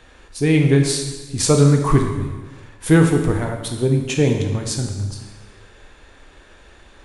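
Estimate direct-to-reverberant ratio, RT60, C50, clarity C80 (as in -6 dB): 3.0 dB, 1.3 s, 5.5 dB, 7.0 dB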